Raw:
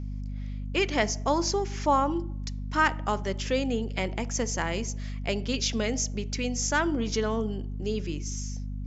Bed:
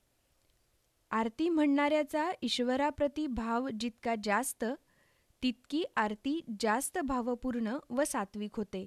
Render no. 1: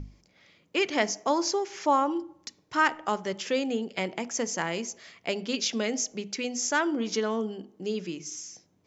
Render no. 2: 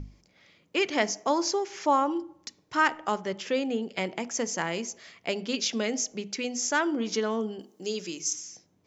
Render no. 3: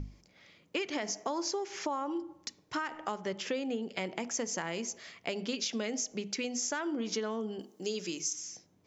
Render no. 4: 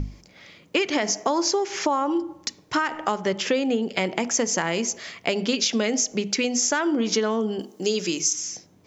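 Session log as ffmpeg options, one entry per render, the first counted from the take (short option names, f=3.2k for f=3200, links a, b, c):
-af "bandreject=f=50:t=h:w=6,bandreject=f=100:t=h:w=6,bandreject=f=150:t=h:w=6,bandreject=f=200:t=h:w=6,bandreject=f=250:t=h:w=6"
-filter_complex "[0:a]asettb=1/sr,asplit=3[a][b][c];[a]atrim=end=3.214[d];[b]atrim=start=3.21:end=3.85,asetpts=PTS-STARTPTS,afade=t=in:d=0.004:c=qsin,afade=t=out:st=0.636:d=0.004:c=qsin,highshelf=f=6.1k:g=-8.5[e];[c]atrim=start=3.846[f];[d][e]acrossfade=d=0.004:c1=hsin:c2=qsin[g];[g][f]acrossfade=d=0.004:c1=qsin:c2=hsin,asettb=1/sr,asplit=3[h][i][j];[h]atrim=end=7.594[k];[i]atrim=start=7.59:end=8.33,asetpts=PTS-STARTPTS,afade=t=in:d=0.004:c=qsin,afade=t=out:st=0.736:d=0.004:c=qsin,bass=f=250:g=-7,treble=f=4k:g=12[l];[j]atrim=start=8.326[m];[k][l]acrossfade=d=0.004:c1=hsin:c2=qsin[n];[n][m]acrossfade=d=0.004:c1=qsin:c2=hsin"
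-af "alimiter=limit=-17.5dB:level=0:latency=1:release=76,acompressor=threshold=-31dB:ratio=6"
-af "volume=11.5dB"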